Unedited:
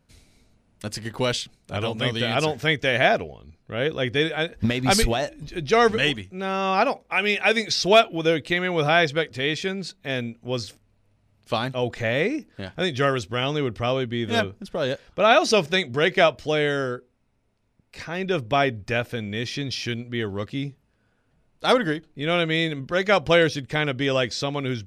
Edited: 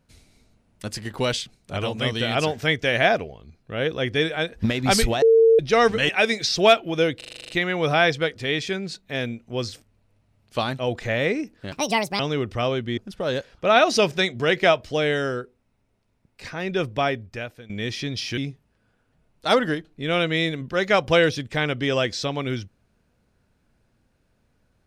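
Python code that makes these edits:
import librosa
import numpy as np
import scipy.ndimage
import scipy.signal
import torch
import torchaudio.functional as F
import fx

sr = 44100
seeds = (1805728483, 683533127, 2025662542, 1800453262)

y = fx.edit(x, sr, fx.bleep(start_s=5.22, length_s=0.37, hz=452.0, db=-11.0),
    fx.cut(start_s=6.09, length_s=1.27),
    fx.stutter(start_s=8.44, slice_s=0.04, count=9),
    fx.speed_span(start_s=12.67, length_s=0.77, speed=1.62),
    fx.cut(start_s=14.22, length_s=0.3),
    fx.fade_out_to(start_s=18.36, length_s=0.88, floor_db=-18.5),
    fx.cut(start_s=19.92, length_s=0.64), tone=tone)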